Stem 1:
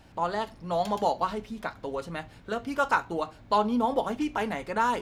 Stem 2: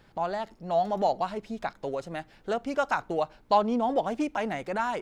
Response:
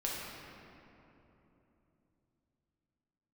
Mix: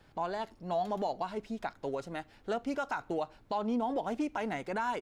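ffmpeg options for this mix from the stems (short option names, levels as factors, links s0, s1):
-filter_complex "[0:a]equalizer=f=91:w=1.5:g=5,volume=0.178[s0];[1:a]adelay=1,volume=0.668[s1];[s0][s1]amix=inputs=2:normalize=0,alimiter=limit=0.0631:level=0:latency=1:release=137"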